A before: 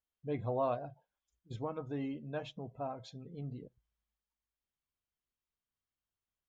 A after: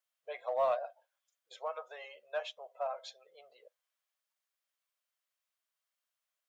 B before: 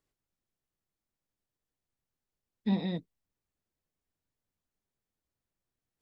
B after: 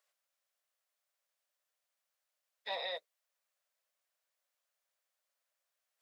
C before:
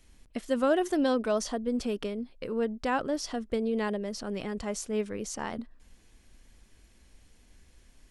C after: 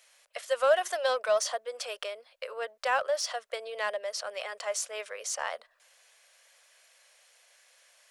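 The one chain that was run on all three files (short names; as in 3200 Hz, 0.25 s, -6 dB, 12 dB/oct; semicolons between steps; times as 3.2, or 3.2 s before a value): elliptic high-pass 560 Hz, stop band 50 dB; bell 870 Hz -5 dB 0.43 oct; in parallel at -10.5 dB: overloaded stage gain 36 dB; on the sum: gain +4 dB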